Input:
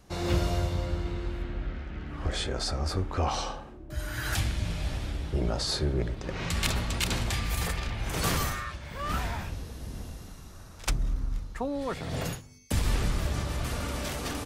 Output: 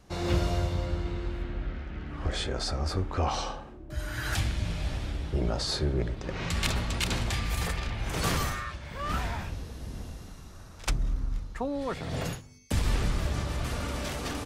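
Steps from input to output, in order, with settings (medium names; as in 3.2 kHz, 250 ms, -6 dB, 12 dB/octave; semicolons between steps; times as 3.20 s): treble shelf 11 kHz -8 dB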